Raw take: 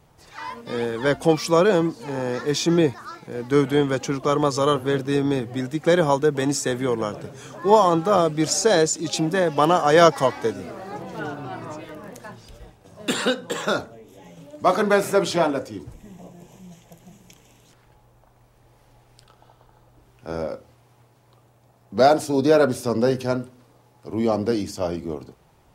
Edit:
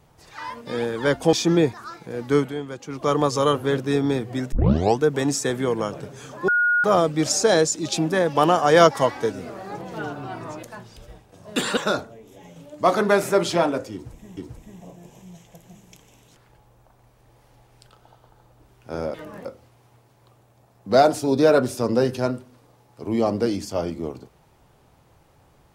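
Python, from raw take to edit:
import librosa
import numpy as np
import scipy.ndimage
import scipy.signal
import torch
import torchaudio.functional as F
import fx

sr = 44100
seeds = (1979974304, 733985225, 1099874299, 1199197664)

y = fx.edit(x, sr, fx.cut(start_s=1.33, length_s=1.21),
    fx.fade_down_up(start_s=3.48, length_s=0.88, db=-11.0, fade_s=0.27, curve='qsin'),
    fx.tape_start(start_s=5.73, length_s=0.48),
    fx.bleep(start_s=7.69, length_s=0.36, hz=1440.0, db=-16.0),
    fx.move(start_s=11.84, length_s=0.31, to_s=20.51),
    fx.cut(start_s=13.29, length_s=0.29),
    fx.repeat(start_s=15.74, length_s=0.44, count=2), tone=tone)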